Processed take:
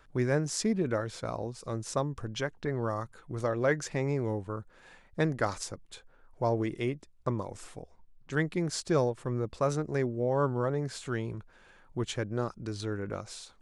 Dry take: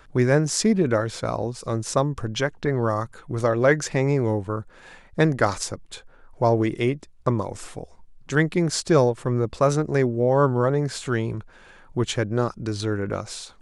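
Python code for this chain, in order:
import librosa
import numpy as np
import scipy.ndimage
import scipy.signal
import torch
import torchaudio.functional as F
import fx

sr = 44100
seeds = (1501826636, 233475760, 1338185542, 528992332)

y = fx.high_shelf(x, sr, hz=6300.0, db=-11.5, at=(7.82, 8.33))
y = y * 10.0 ** (-9.0 / 20.0)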